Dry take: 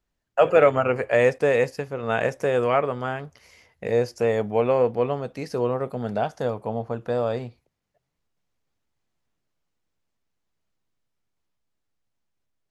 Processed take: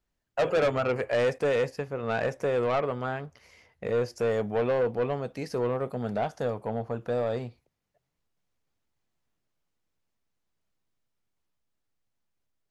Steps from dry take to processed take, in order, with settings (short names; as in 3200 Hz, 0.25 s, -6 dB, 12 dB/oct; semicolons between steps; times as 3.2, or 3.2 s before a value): 1.61–4.1 high shelf 5400 Hz -6.5 dB; soft clip -18 dBFS, distortion -10 dB; gain -2 dB